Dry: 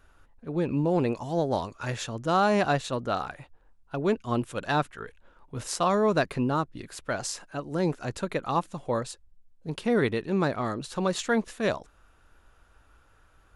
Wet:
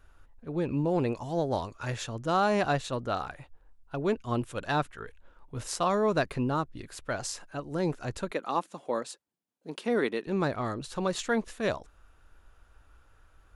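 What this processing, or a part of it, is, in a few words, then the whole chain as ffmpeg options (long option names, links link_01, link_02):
low shelf boost with a cut just above: -filter_complex "[0:a]asettb=1/sr,asplit=3[link_01][link_02][link_03];[link_01]atrim=end=8.314[link_04];[link_02]atrim=start=8.31:end=10.27,asetpts=PTS-STARTPTS,afade=type=in:duration=0.004:curve=qsin,afade=type=out:start_time=1.956:duration=0.004:curve=qsin,highpass=frequency=210:width=0.5412,highpass=frequency=210:width=1.3066[link_05];[link_03]atrim=start=10.266[link_06];[link_04][link_05]acrossfade=duration=0.004:curve1=hsin:curve2=qsin[link_07];[link_07][link_06]acrossfade=duration=0.004:curve1=qsin:curve2=hsin,lowshelf=frequency=93:gain=6,equalizer=frequency=190:width_type=o:width=0.77:gain=-2.5,volume=-2.5dB"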